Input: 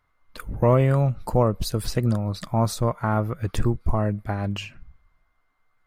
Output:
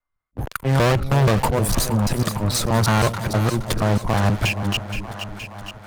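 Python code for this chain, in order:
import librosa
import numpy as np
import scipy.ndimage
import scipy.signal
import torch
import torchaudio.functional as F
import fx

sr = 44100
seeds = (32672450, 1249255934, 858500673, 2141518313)

p1 = fx.block_reorder(x, sr, ms=159.0, group=2)
p2 = fx.low_shelf(p1, sr, hz=100.0, db=-2.0)
p3 = fx.auto_swell(p2, sr, attack_ms=262.0)
p4 = fx.noise_reduce_blind(p3, sr, reduce_db=17)
p5 = fx.leveller(p4, sr, passes=5)
p6 = fx.spec_box(p5, sr, start_s=1.55, length_s=0.45, low_hz=1300.0, high_hz=5500.0, gain_db=-7)
p7 = fx.tube_stage(p6, sr, drive_db=14.0, bias=0.3)
p8 = p7 + fx.echo_split(p7, sr, split_hz=700.0, low_ms=330, high_ms=470, feedback_pct=52, wet_db=-12.0, dry=0)
y = fx.band_squash(p8, sr, depth_pct=40)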